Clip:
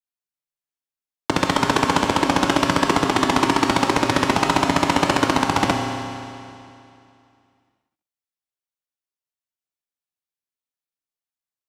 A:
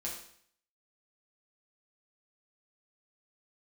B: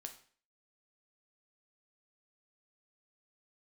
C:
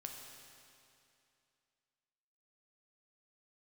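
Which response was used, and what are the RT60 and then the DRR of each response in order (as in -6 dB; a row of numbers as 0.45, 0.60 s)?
C; 0.60, 0.45, 2.6 s; -4.5, 5.0, 1.5 dB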